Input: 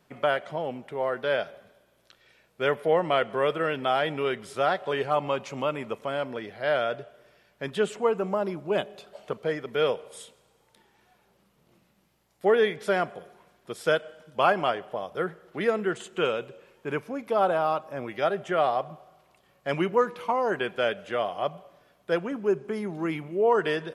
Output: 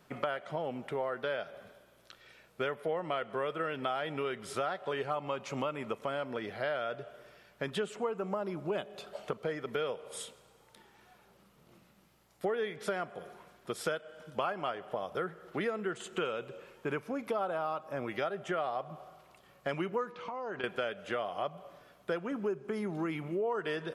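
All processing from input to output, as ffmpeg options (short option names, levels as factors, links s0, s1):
-filter_complex "[0:a]asettb=1/sr,asplit=3[s0][s1][s2];[s0]atrim=end=20.124[s3];[s1]atrim=start=20.12:end=20.64,asetpts=PTS-STARTPTS,afade=t=in:d=0.004:c=qsin,afade=t=out:st=0.516:d=0.004:c=qsin,lowpass=f=6400:w=0.5412,lowpass=f=6400:w=1.3066,acompressor=threshold=0.0141:ratio=10:attack=3.2:release=140:knee=1:detection=peak[s4];[s2]atrim=start=20.636[s5];[s3][s4]acrossfade=d=0.004:c1=hsin:c2=qsin[s6];[s6][s5]acrossfade=d=0.004:c1=qsin:c2=hsin,equalizer=f=1300:t=o:w=0.28:g=4,acompressor=threshold=0.02:ratio=5,volume=1.26"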